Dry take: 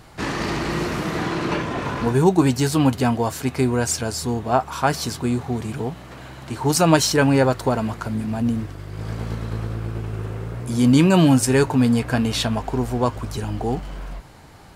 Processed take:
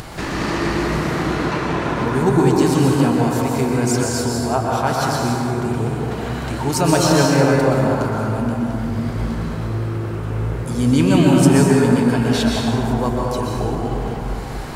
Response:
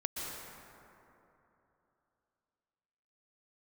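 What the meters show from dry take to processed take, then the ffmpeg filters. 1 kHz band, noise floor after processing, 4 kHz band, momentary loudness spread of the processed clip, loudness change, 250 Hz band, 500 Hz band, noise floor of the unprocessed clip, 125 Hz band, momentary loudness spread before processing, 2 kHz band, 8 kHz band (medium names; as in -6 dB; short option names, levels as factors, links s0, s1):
+3.0 dB, -26 dBFS, +1.0 dB, 10 LU, +2.5 dB, +3.0 dB, +3.5 dB, -41 dBFS, +3.5 dB, 14 LU, +2.5 dB, +1.0 dB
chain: -filter_complex "[0:a]acompressor=mode=upward:threshold=0.126:ratio=2.5[s0];[1:a]atrim=start_sample=2205[s1];[s0][s1]afir=irnorm=-1:irlink=0,volume=0.891"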